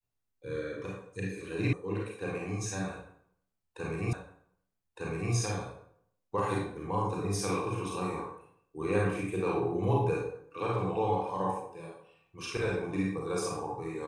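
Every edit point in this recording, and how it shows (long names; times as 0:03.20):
0:01.73: cut off before it has died away
0:04.13: the same again, the last 1.21 s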